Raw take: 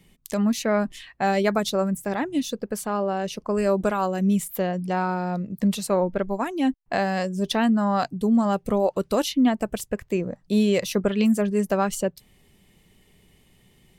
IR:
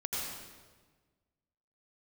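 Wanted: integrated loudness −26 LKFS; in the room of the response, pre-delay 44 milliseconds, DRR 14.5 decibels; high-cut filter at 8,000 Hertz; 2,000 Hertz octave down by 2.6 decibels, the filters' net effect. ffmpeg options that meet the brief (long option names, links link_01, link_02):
-filter_complex "[0:a]lowpass=8000,equalizer=frequency=2000:width_type=o:gain=-3.5,asplit=2[link_01][link_02];[1:a]atrim=start_sample=2205,adelay=44[link_03];[link_02][link_03]afir=irnorm=-1:irlink=0,volume=-18.5dB[link_04];[link_01][link_04]amix=inputs=2:normalize=0,volume=-1.5dB"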